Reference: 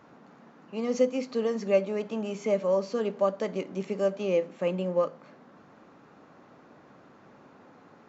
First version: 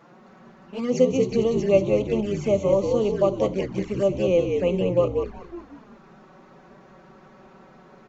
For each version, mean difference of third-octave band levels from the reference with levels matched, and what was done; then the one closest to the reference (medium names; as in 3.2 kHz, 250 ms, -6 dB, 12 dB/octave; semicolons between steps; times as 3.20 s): 4.5 dB: frequency-shifting echo 186 ms, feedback 47%, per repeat -60 Hz, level -5 dB; touch-sensitive flanger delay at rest 6.3 ms, full sweep at -24 dBFS; trim +6 dB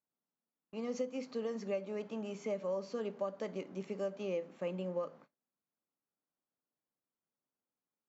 6.0 dB: gate -46 dBFS, range -36 dB; compression, threshold -24 dBFS, peak gain reduction 7 dB; trim -8.5 dB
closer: first